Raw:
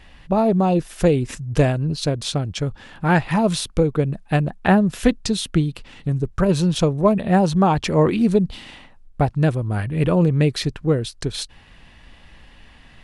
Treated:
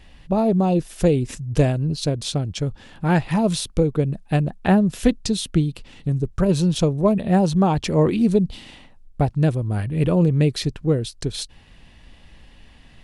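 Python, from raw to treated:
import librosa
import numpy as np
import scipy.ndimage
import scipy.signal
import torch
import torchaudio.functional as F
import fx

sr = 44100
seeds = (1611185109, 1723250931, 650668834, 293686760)

y = fx.peak_eq(x, sr, hz=1400.0, db=-6.0, octaves=1.9)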